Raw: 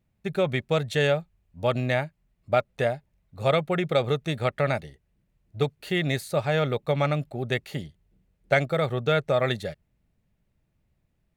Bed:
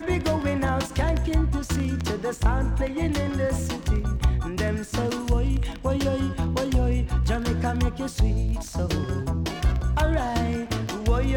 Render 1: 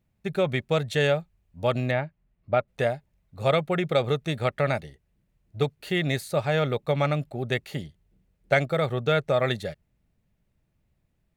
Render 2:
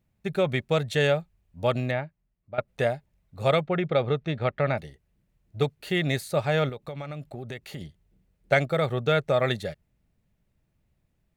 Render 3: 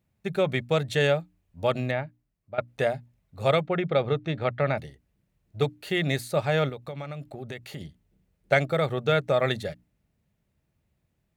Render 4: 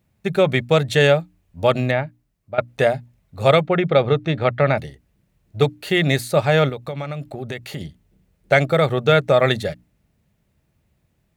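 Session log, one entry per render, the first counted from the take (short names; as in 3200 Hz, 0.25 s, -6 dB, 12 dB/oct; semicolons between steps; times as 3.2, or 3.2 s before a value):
1.91–2.68 air absorption 250 m
1.69–2.58 fade out, to -16 dB; 3.61–4.78 air absorption 190 m; 6.69–7.81 compressor, threshold -33 dBFS
HPF 47 Hz; notches 60/120/180/240/300 Hz
gain +8 dB; limiter -2 dBFS, peak gain reduction 3 dB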